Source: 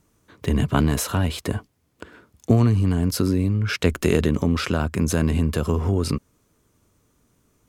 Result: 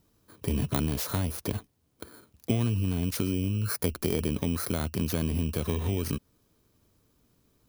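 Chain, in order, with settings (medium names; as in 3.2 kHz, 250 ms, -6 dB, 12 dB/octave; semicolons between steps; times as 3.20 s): bit-reversed sample order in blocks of 16 samples; compression 2:1, threshold -24 dBFS, peak gain reduction 7.5 dB; trim -3.5 dB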